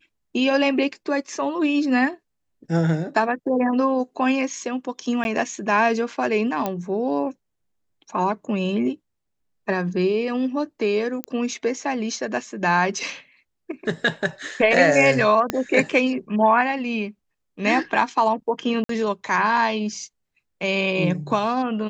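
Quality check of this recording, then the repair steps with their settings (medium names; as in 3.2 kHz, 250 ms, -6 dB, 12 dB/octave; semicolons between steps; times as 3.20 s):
5.24–5.25 s: dropout 11 ms
6.66 s: pop -11 dBFS
11.24 s: pop -13 dBFS
15.50 s: pop -7 dBFS
18.84–18.89 s: dropout 53 ms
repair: de-click; interpolate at 5.24 s, 11 ms; interpolate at 18.84 s, 53 ms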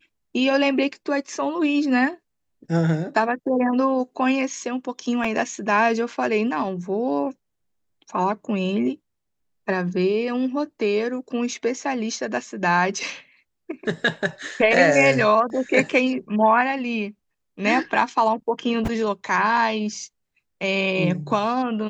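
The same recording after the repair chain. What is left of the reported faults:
15.50 s: pop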